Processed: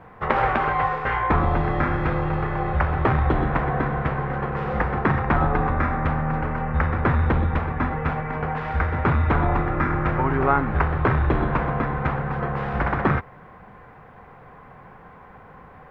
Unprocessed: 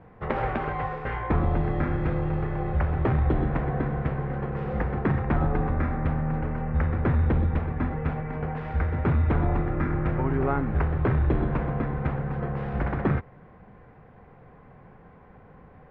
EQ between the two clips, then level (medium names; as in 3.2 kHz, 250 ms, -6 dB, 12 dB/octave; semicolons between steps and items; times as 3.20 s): peaking EQ 1.1 kHz +8 dB 1.5 oct; treble shelf 2.6 kHz +10.5 dB; +1.5 dB